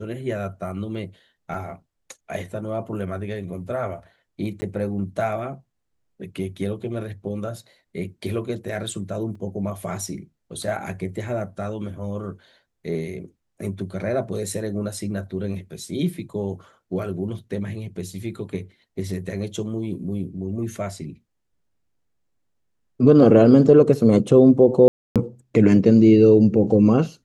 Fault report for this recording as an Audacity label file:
1.540000	1.540000	drop-out 3.5 ms
4.610000	4.620000	drop-out 10 ms
9.350000	9.350000	drop-out 3.7 ms
24.880000	25.160000	drop-out 277 ms

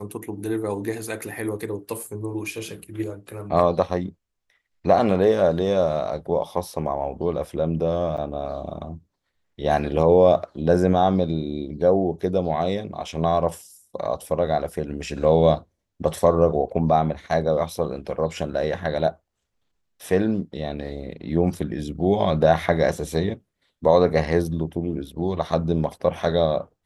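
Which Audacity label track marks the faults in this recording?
8.170000	8.180000	drop-out 7.3 ms

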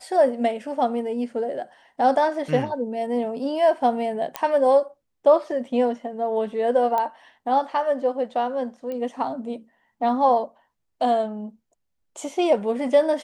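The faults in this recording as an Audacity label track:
4.360000	4.360000	click −9 dBFS
6.980000	6.980000	click −13 dBFS
8.920000	8.920000	click −21 dBFS

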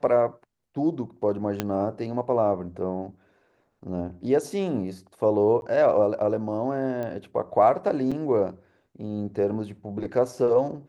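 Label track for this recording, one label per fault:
1.600000	1.600000	click −10 dBFS
5.610000	5.620000	drop-out 11 ms
7.030000	7.030000	click −21 dBFS
8.110000	8.120000	drop-out 5.7 ms

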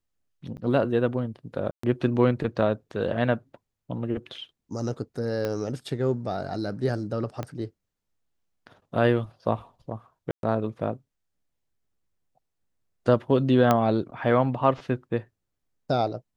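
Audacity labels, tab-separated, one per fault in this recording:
0.570000	0.580000	drop-out 8.9 ms
1.710000	1.830000	drop-out 124 ms
5.450000	5.450000	click −16 dBFS
7.430000	7.430000	click −18 dBFS
10.310000	10.430000	drop-out 122 ms
13.710000	13.710000	click −8 dBFS

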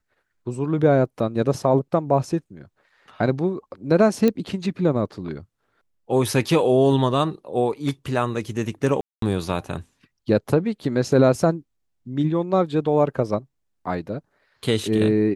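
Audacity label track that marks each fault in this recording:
4.280000	4.280000	click −9 dBFS
9.010000	9.220000	drop-out 213 ms

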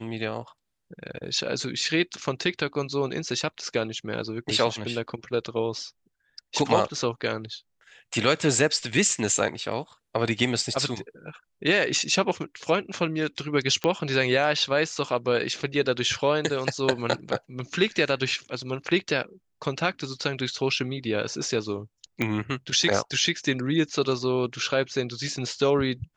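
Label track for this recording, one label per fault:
13.840000	13.840000	click −12 dBFS
22.220000	22.220000	click −12 dBFS

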